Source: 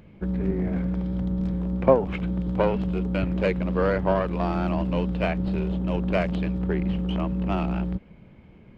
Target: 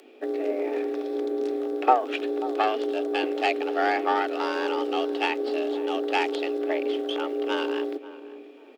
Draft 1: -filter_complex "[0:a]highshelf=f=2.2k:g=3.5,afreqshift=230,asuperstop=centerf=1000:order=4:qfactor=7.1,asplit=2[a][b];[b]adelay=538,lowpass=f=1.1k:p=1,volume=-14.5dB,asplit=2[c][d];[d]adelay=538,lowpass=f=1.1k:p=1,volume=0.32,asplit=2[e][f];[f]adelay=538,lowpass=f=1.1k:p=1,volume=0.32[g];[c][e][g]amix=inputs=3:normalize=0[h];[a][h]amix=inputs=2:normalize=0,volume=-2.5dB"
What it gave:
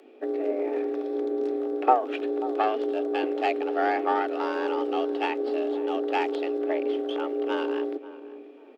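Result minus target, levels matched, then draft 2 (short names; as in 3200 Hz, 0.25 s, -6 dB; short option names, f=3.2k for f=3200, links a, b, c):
4000 Hz band -6.0 dB
-filter_complex "[0:a]highshelf=f=2.2k:g=14,afreqshift=230,asuperstop=centerf=1000:order=4:qfactor=7.1,asplit=2[a][b];[b]adelay=538,lowpass=f=1.1k:p=1,volume=-14.5dB,asplit=2[c][d];[d]adelay=538,lowpass=f=1.1k:p=1,volume=0.32,asplit=2[e][f];[f]adelay=538,lowpass=f=1.1k:p=1,volume=0.32[g];[c][e][g]amix=inputs=3:normalize=0[h];[a][h]amix=inputs=2:normalize=0,volume=-2.5dB"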